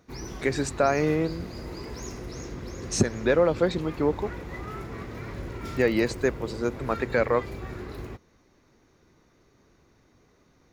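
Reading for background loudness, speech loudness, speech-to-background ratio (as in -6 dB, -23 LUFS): -38.0 LUFS, -26.0 LUFS, 12.0 dB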